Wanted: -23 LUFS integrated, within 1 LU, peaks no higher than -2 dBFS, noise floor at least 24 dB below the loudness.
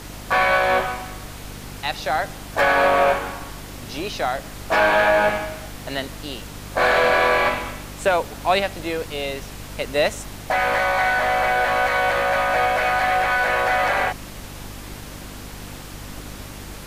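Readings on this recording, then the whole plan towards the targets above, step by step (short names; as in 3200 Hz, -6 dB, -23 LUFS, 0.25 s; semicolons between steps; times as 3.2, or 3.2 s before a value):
hum 50 Hz; harmonics up to 300 Hz; hum level -36 dBFS; noise floor -37 dBFS; noise floor target -45 dBFS; loudness -20.5 LUFS; peak -6.5 dBFS; loudness target -23.0 LUFS
-> de-hum 50 Hz, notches 6; noise print and reduce 8 dB; gain -2.5 dB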